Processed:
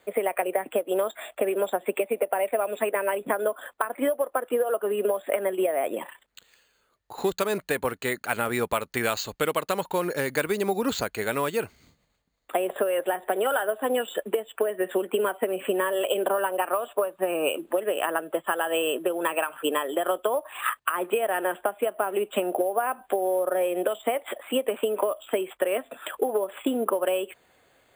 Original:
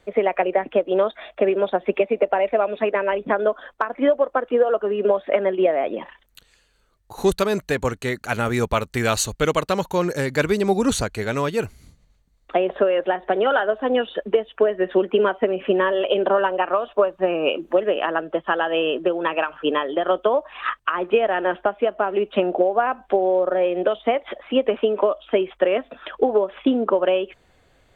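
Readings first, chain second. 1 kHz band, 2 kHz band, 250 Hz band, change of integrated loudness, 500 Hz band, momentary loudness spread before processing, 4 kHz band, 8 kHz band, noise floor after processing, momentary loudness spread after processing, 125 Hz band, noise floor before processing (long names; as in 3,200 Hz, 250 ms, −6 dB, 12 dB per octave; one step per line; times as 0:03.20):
−5.0 dB, −4.0 dB, −7.0 dB, −5.5 dB, −6.0 dB, 5 LU, −4.0 dB, −2.0 dB, −69 dBFS, 4 LU, −11.0 dB, −61 dBFS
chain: high-pass filter 370 Hz 6 dB per octave
downward compressor, threshold −21 dBFS, peak gain reduction 7.5 dB
bad sample-rate conversion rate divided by 4×, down filtered, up hold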